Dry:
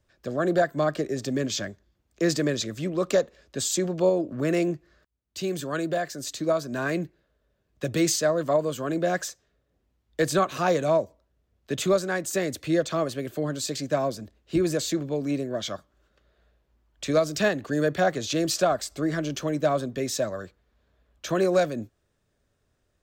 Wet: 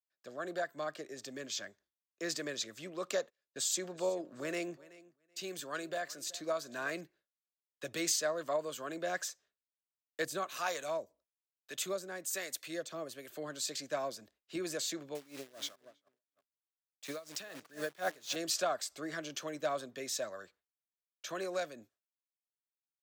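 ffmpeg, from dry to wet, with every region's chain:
ffmpeg -i in.wav -filter_complex "[0:a]asettb=1/sr,asplit=3[link_01][link_02][link_03];[link_01]atrim=end=3.194[link_04];[link_02]atrim=start=3.19:end=7.01,asetpts=PTS-STARTPTS,afade=type=in:duration=0.004:curve=qsin,afade=type=out:start_time=3.816:duration=0.004:curve=qsin,agate=range=-22dB:threshold=-47dB:ratio=16:release=100:detection=peak,aecho=1:1:377|754:0.1|0.03,atrim=end_sample=168462[link_05];[link_03]atrim=start=7.006[link_06];[link_04][link_05]acrossfade=duration=0.004:curve1=hsin:curve2=qsin[link_07];[link_07][link_06]acrossfade=duration=0.004:curve1=qsin:curve2=hsin,asettb=1/sr,asplit=3[link_08][link_09][link_10];[link_08]atrim=end=10.254[link_11];[link_09]atrim=start=10.25:end=13.3,asetpts=PTS-STARTPTS,afade=type=in:duration=0.004:curve=qsin,afade=type=out:start_time=3.046:duration=0.004:curve=qsin,highshelf=frequency=8500:gain=9.5,acrossover=split=590[link_12][link_13];[link_12]aeval=exprs='val(0)*(1-0.7/2+0.7/2*cos(2*PI*1.1*n/s))':channel_layout=same[link_14];[link_13]aeval=exprs='val(0)*(1-0.7/2-0.7/2*cos(2*PI*1.1*n/s))':channel_layout=same[link_15];[link_14][link_15]amix=inputs=2:normalize=0[link_16];[link_10]atrim=start=13.296[link_17];[link_11][link_16]acrossfade=duration=0.004:curve1=hsin:curve2=qsin[link_18];[link_18][link_17]acrossfade=duration=0.004:curve1=qsin:curve2=hsin,asettb=1/sr,asplit=3[link_19][link_20][link_21];[link_19]atrim=end=15.154[link_22];[link_20]atrim=start=15.15:end=18.36,asetpts=PTS-STARTPTS,afade=type=in:duration=0.004:curve=qsin,afade=type=out:start_time=3.206:duration=0.004:curve=qsin,acrusher=bits=7:dc=4:mix=0:aa=0.000001,asplit=2[link_23][link_24];[link_24]adelay=327,lowpass=frequency=2600:poles=1,volume=-15dB,asplit=2[link_25][link_26];[link_26]adelay=327,lowpass=frequency=2600:poles=1,volume=0.33,asplit=2[link_27][link_28];[link_28]adelay=327,lowpass=frequency=2600:poles=1,volume=0.33[link_29];[link_23][link_25][link_27][link_29]amix=inputs=4:normalize=0,atrim=end_sample=141561,aeval=exprs='val(0)*pow(10,-19*(0.5-0.5*cos(2*PI*4.1*n/s))/20)':channel_layout=same[link_30];[link_21]atrim=start=18.356[link_31];[link_22][link_30]acrossfade=duration=0.004:curve1=hsin:curve2=qsin[link_32];[link_32][link_31]acrossfade=duration=0.004:curve1=qsin:curve2=hsin,highpass=frequency=1000:poles=1,agate=range=-33dB:threshold=-55dB:ratio=3:detection=peak,dynaudnorm=framelen=230:gausssize=21:maxgain=3.5dB,volume=-9dB" out.wav

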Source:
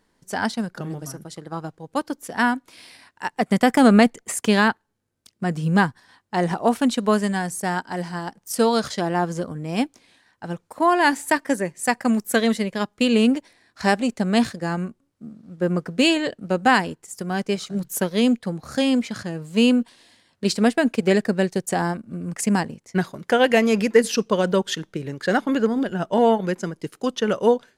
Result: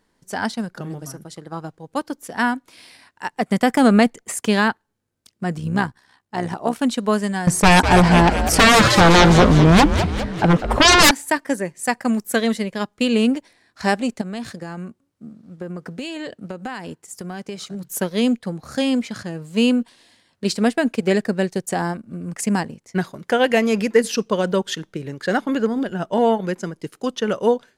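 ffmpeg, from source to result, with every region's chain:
ffmpeg -i in.wav -filter_complex "[0:a]asettb=1/sr,asplit=3[link_01][link_02][link_03];[link_01]atrim=end=5.584[link_04];[link_02]atrim=start=5.58:end=6.81,asetpts=PTS-STARTPTS,afade=type=in:duration=0.004:curve=qsin,afade=type=out:start_time=1.226:duration=0.004:curve=qsin,bandreject=frequency=520:width=16,tremolo=f=66:d=0.621[link_05];[link_03]atrim=start=6.806[link_06];[link_04][link_05]acrossfade=duration=0.004:curve1=hsin:curve2=qsin[link_07];[link_07][link_06]acrossfade=duration=0.004:curve1=qsin:curve2=hsin,asettb=1/sr,asplit=3[link_08][link_09][link_10];[link_08]atrim=end=7.474[link_11];[link_09]atrim=start=7.47:end=11.11,asetpts=PTS-STARTPTS,afade=type=in:duration=0.004:curve=qsin,afade=type=out:start_time=3.636:duration=0.004:curve=qsin,lowpass=frequency=2200:poles=1,aeval=exprs='0.398*sin(PI/2*6.31*val(0)/0.398)':channel_layout=same,asplit=8[link_12][link_13][link_14][link_15][link_16][link_17][link_18][link_19];[link_13]adelay=201,afreqshift=-120,volume=-8dB[link_20];[link_14]adelay=402,afreqshift=-240,volume=-12.9dB[link_21];[link_15]adelay=603,afreqshift=-360,volume=-17.8dB[link_22];[link_16]adelay=804,afreqshift=-480,volume=-22.6dB[link_23];[link_17]adelay=1005,afreqshift=-600,volume=-27.5dB[link_24];[link_18]adelay=1206,afreqshift=-720,volume=-32.4dB[link_25];[link_19]adelay=1407,afreqshift=-840,volume=-37.3dB[link_26];[link_12][link_20][link_21][link_22][link_23][link_24][link_25][link_26]amix=inputs=8:normalize=0,atrim=end_sample=160524[link_27];[link_10]atrim=start=11.106[link_28];[link_11][link_27]acrossfade=duration=0.004:curve1=hsin:curve2=qsin[link_29];[link_29][link_28]acrossfade=duration=0.004:curve1=qsin:curve2=hsin,asettb=1/sr,asplit=3[link_30][link_31][link_32];[link_30]atrim=end=14.214[link_33];[link_31]atrim=start=14.21:end=17.89,asetpts=PTS-STARTPTS,afade=type=in:duration=0.004:curve=qsin,afade=type=out:start_time=3.676:duration=0.004:curve=qsin,highpass=45,acompressor=threshold=-26dB:ratio=8:attack=3.2:release=140:knee=1:detection=peak[link_34];[link_32]atrim=start=17.886[link_35];[link_33][link_34]acrossfade=duration=0.004:curve1=hsin:curve2=qsin[link_36];[link_36][link_35]acrossfade=duration=0.004:curve1=qsin:curve2=hsin" out.wav

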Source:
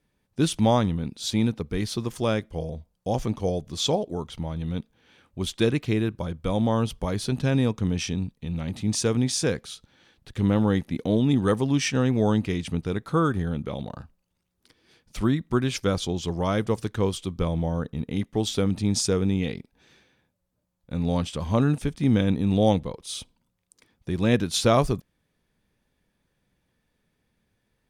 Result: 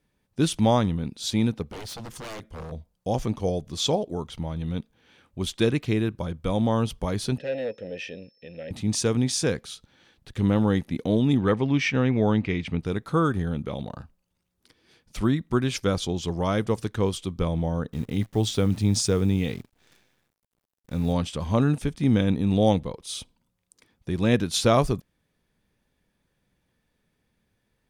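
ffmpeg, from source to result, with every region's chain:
ffmpeg -i in.wav -filter_complex "[0:a]asettb=1/sr,asplit=3[link_01][link_02][link_03];[link_01]atrim=end=1.624[link_04];[link_02]atrim=start=1.62:end=2.72,asetpts=PTS-STARTPTS,afade=type=in:duration=0.004:curve=qsin,afade=type=out:start_time=1.096:duration=0.004:curve=qsin,acompressor=threshold=-34dB:ratio=1.5:attack=3.2:release=140:knee=1:detection=peak,aeval=exprs='0.0251*(abs(mod(val(0)/0.0251+3,4)-2)-1)':channel_layout=same[link_05];[link_03]atrim=start=2.716[link_06];[link_04][link_05]acrossfade=duration=0.004:curve1=hsin:curve2=qsin[link_07];[link_07][link_06]acrossfade=duration=0.004:curve1=qsin:curve2=hsin,asettb=1/sr,asplit=3[link_08][link_09][link_10];[link_08]atrim=end=7.384[link_11];[link_09]atrim=start=7.38:end=8.71,asetpts=PTS-STARTPTS,afade=type=in:duration=0.004:curve=qsin,afade=type=out:start_time=1.326:duration=0.004:curve=qsin,aeval=exprs='0.282*sin(PI/2*2*val(0)/0.282)':channel_layout=same,asplit=3[link_12][link_13][link_14];[link_12]bandpass=frequency=530:width_type=q:width=8,volume=0dB[link_15];[link_13]bandpass=frequency=1840:width_type=q:width=8,volume=-6dB[link_16];[link_14]bandpass=frequency=2480:width_type=q:width=8,volume=-9dB[link_17];[link_15][link_16][link_17]amix=inputs=3:normalize=0,aeval=exprs='val(0)+0.000708*sin(2*PI*5300*n/s)':channel_layout=same[link_18];[link_10]atrim=start=8.706[link_19];[link_11][link_18]acrossfade=duration=0.004:curve1=hsin:curve2=qsin[link_20];[link_20][link_19]acrossfade=duration=0.004:curve1=qsin:curve2=hsin,asettb=1/sr,asplit=3[link_21][link_22][link_23];[link_21]atrim=end=11.374[link_24];[link_22]atrim=start=11.37:end=12.81,asetpts=PTS-STARTPTS,afade=type=in:duration=0.004:curve=qsin,afade=type=out:start_time=1.436:duration=0.004:curve=qsin,lowpass=3800,equalizer=frequency=2200:width_type=o:width=0.33:gain=8[link_25];[link_23]atrim=start=12.806[link_26];[link_24][link_25]acrossfade=duration=0.004:curve1=hsin:curve2=qsin[link_27];[link_27][link_26]acrossfade=duration=0.004:curve1=qsin:curve2=hsin,asettb=1/sr,asplit=3[link_28][link_29][link_30];[link_28]atrim=end=17.924[link_31];[link_29]atrim=start=17.92:end=21.13,asetpts=PTS-STARTPTS,afade=type=in:duration=0.004:curve=qsin,afade=type=out:start_time=3.206:duration=0.004:curve=qsin,adynamicequalizer=threshold=0.00891:dfrequency=110:dqfactor=3.4:tfrequency=110:tqfactor=3.4:attack=5:release=100:ratio=0.375:range=3:mode=boostabove:tftype=bell,acrusher=bits=9:dc=4:mix=0:aa=0.000001[link_32];[link_30]atrim=start=21.126[link_33];[link_31][link_32]acrossfade=duration=0.004:curve1=hsin:curve2=qsin[link_34];[link_34][link_33]acrossfade=duration=0.004:curve1=qsin:curve2=hsin" out.wav

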